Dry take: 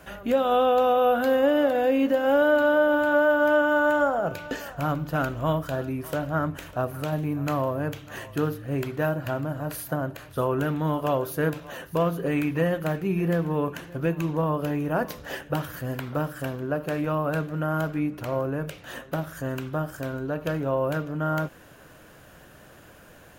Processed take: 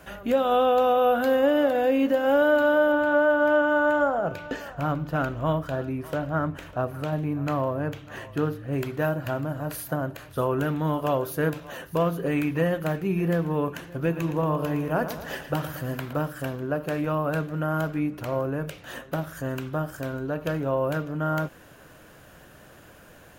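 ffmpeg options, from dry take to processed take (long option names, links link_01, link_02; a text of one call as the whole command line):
ffmpeg -i in.wav -filter_complex "[0:a]asettb=1/sr,asplit=3[link_01][link_02][link_03];[link_01]atrim=end=2.924[link_04];[link_02]atrim=start=2.92:end=8.73,asetpts=PTS-STARTPTS,afade=type=in:duration=0.004:curve=qsin,afade=type=out:start_time=5.806:duration=0.004:curve=qsin,highshelf=frequency=5200:gain=-9.5[link_05];[link_03]atrim=start=8.726[link_06];[link_04][link_05]acrossfade=duration=0.004:curve1=hsin:curve2=qsin[link_07];[link_07][link_06]acrossfade=duration=0.004:curve1=qsin:curve2=hsin,asettb=1/sr,asplit=3[link_08][link_09][link_10];[link_08]atrim=end=13.954[link_11];[link_09]atrim=start=13.95:end=16.13,asetpts=PTS-STARTPTS,afade=type=in:duration=0.004:curve=qsin,afade=type=out:start_time=2.176:duration=0.004:curve=qsin,aecho=1:1:115|230|345|460|575|690:0.282|0.155|0.0853|0.0469|0.0258|0.0142,atrim=end_sample=96138[link_12];[link_10]atrim=start=16.126[link_13];[link_11][link_12]acrossfade=duration=0.004:curve1=hsin:curve2=qsin[link_14];[link_14][link_13]acrossfade=duration=0.004:curve1=qsin:curve2=hsin" out.wav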